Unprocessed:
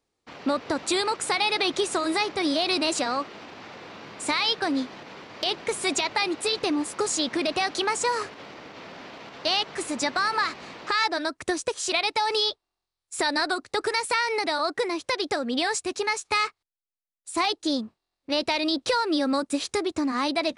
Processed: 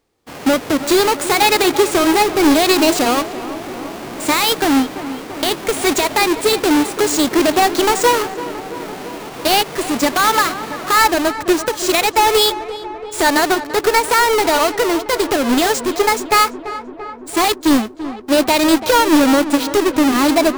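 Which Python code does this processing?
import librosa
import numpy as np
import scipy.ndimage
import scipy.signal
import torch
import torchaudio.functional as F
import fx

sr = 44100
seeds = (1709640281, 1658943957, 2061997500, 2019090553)

y = fx.halfwave_hold(x, sr)
y = fx.echo_filtered(y, sr, ms=338, feedback_pct=75, hz=2000.0, wet_db=-13.0)
y = fx.hpss(y, sr, part='harmonic', gain_db=6)
y = F.gain(torch.from_numpy(y), 2.5).numpy()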